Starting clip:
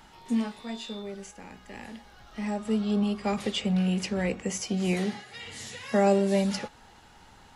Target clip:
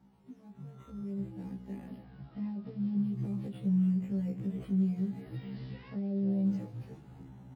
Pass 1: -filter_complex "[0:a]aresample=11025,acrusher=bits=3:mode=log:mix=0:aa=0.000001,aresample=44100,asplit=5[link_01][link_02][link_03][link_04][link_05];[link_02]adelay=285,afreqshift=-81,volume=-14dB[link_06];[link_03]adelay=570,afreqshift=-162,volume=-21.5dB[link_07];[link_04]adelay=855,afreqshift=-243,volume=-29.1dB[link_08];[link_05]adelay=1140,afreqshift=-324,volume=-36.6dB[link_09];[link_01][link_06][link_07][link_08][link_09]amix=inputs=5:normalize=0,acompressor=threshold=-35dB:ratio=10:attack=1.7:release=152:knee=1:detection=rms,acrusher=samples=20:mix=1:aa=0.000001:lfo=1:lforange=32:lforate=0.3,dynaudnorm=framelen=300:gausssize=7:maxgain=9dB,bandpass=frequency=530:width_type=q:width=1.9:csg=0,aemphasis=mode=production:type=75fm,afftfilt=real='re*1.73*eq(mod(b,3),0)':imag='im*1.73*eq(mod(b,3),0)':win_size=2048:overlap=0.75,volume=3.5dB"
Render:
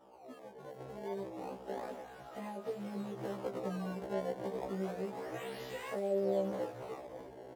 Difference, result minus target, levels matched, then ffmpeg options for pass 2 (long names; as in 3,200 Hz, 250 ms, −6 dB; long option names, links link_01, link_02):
500 Hz band +16.0 dB; sample-and-hold swept by an LFO: distortion +7 dB
-filter_complex "[0:a]aresample=11025,acrusher=bits=3:mode=log:mix=0:aa=0.000001,aresample=44100,asplit=5[link_01][link_02][link_03][link_04][link_05];[link_02]adelay=285,afreqshift=-81,volume=-14dB[link_06];[link_03]adelay=570,afreqshift=-162,volume=-21.5dB[link_07];[link_04]adelay=855,afreqshift=-243,volume=-29.1dB[link_08];[link_05]adelay=1140,afreqshift=-324,volume=-36.6dB[link_09];[link_01][link_06][link_07][link_08][link_09]amix=inputs=5:normalize=0,acompressor=threshold=-35dB:ratio=10:attack=1.7:release=152:knee=1:detection=rms,acrusher=samples=5:mix=1:aa=0.000001:lfo=1:lforange=8:lforate=0.3,dynaudnorm=framelen=300:gausssize=7:maxgain=9dB,bandpass=frequency=170:width_type=q:width=1.9:csg=0,aemphasis=mode=production:type=75fm,afftfilt=real='re*1.73*eq(mod(b,3),0)':imag='im*1.73*eq(mod(b,3),0)':win_size=2048:overlap=0.75,volume=3.5dB"